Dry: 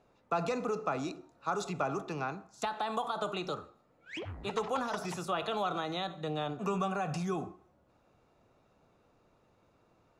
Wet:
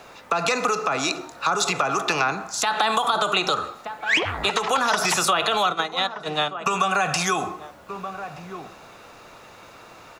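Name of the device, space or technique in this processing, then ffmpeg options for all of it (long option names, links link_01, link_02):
mastering chain: -filter_complex "[0:a]asplit=3[link_01][link_02][link_03];[link_01]afade=type=out:start_time=5.62:duration=0.02[link_04];[link_02]agate=range=-24dB:threshold=-32dB:ratio=16:detection=peak,afade=type=in:start_time=5.62:duration=0.02,afade=type=out:start_time=6.66:duration=0.02[link_05];[link_03]afade=type=in:start_time=6.66:duration=0.02[link_06];[link_04][link_05][link_06]amix=inputs=3:normalize=0,equalizer=frequency=1800:width_type=o:width=0.77:gain=1.5,asplit=2[link_07][link_08];[link_08]adelay=1224,volume=-21dB,highshelf=frequency=4000:gain=-27.6[link_09];[link_07][link_09]amix=inputs=2:normalize=0,acrossover=split=460|1100[link_10][link_11][link_12];[link_10]acompressor=threshold=-45dB:ratio=4[link_13];[link_11]acompressor=threshold=-46dB:ratio=4[link_14];[link_12]acompressor=threshold=-46dB:ratio=4[link_15];[link_13][link_14][link_15]amix=inputs=3:normalize=0,acompressor=threshold=-44dB:ratio=2,tiltshelf=frequency=660:gain=-8,alimiter=level_in=30dB:limit=-1dB:release=50:level=0:latency=1,volume=-8dB"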